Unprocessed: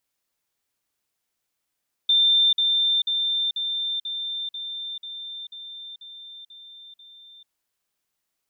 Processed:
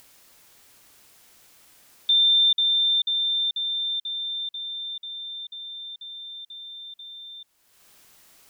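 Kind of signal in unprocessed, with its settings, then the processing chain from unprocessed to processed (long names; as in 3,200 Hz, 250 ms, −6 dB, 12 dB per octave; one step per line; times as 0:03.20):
level staircase 3,580 Hz −15 dBFS, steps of −3 dB, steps 11, 0.44 s 0.05 s
upward compression, threshold −34 dBFS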